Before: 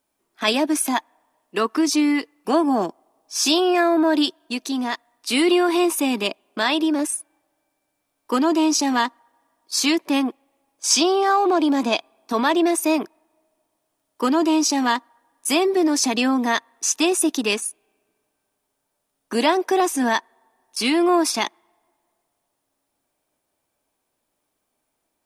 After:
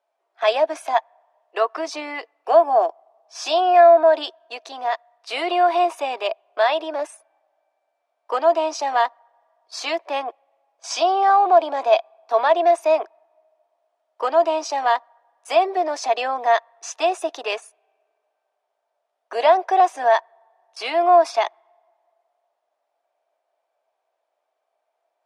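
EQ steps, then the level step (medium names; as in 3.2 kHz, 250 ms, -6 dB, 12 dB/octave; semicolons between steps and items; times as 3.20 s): inverse Chebyshev high-pass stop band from 190 Hz, stop band 50 dB; tape spacing loss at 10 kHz 23 dB; peaking EQ 680 Hz +11 dB 0.38 oct; +2.0 dB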